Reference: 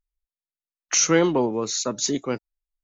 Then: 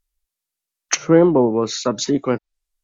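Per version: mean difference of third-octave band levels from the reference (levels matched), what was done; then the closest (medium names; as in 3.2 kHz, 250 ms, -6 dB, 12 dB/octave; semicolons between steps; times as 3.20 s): 3.5 dB: low-pass that closes with the level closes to 850 Hz, closed at -18.5 dBFS; treble shelf 3.9 kHz +7.5 dB; trim +7 dB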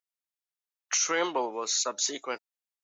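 6.0 dB: high-pass 720 Hz 12 dB/octave; peak limiter -16.5 dBFS, peak gain reduction 9.5 dB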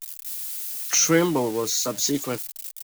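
8.5 dB: zero-crossing glitches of -22 dBFS; comb 6.6 ms, depth 39%; trim -1.5 dB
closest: first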